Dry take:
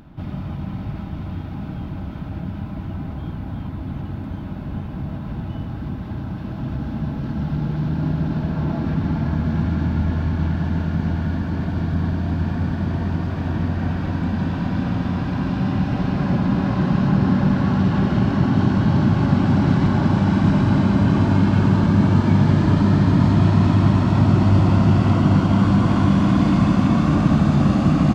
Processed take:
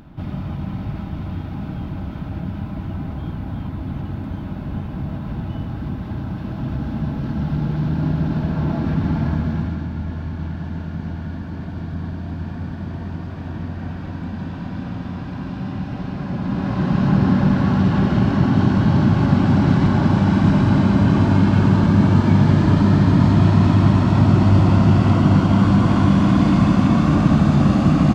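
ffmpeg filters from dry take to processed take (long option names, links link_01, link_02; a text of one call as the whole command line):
ffmpeg -i in.wav -af "volume=9dB,afade=type=out:start_time=9.26:duration=0.6:silence=0.421697,afade=type=in:start_time=16.32:duration=0.8:silence=0.421697" out.wav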